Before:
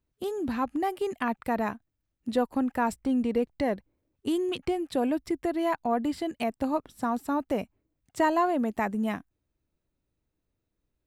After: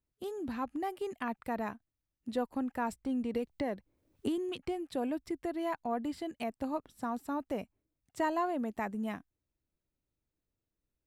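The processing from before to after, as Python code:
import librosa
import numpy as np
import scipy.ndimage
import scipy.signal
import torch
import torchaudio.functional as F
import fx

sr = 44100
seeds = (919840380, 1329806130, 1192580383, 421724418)

y = fx.band_squash(x, sr, depth_pct=100, at=(3.34, 4.38))
y = y * 10.0 ** (-7.5 / 20.0)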